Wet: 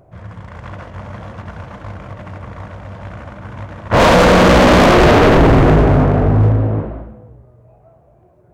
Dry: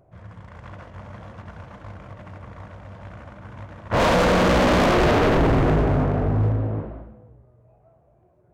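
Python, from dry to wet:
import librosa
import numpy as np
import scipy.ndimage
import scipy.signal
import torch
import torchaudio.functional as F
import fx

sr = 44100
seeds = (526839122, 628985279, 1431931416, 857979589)

y = x * 10.0 ** (9.0 / 20.0)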